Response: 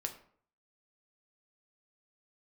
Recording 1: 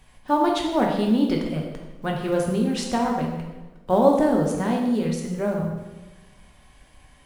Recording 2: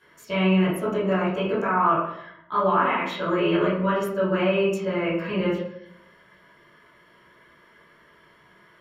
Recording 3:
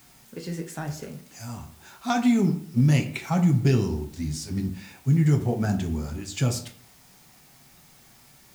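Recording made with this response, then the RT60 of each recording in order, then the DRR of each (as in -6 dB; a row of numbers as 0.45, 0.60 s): 3; 1.2, 0.75, 0.55 s; -0.5, -12.0, 4.0 dB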